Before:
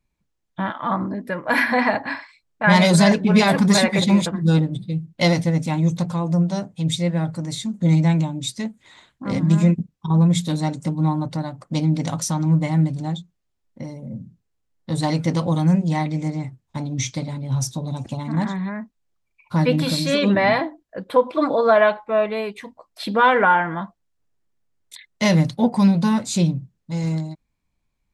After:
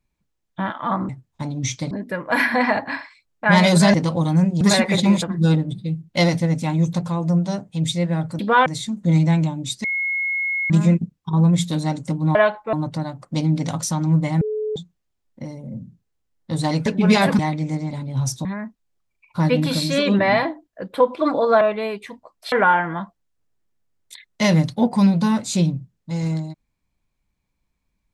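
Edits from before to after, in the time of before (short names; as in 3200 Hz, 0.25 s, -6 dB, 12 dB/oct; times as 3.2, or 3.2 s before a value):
3.12–3.65 swap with 15.25–15.92
8.61–9.47 bleep 2170 Hz -20 dBFS
12.8–13.15 bleep 429 Hz -21.5 dBFS
16.44–17.26 move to 1.09
17.8–18.61 cut
21.77–22.15 move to 11.12
23.06–23.33 move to 7.43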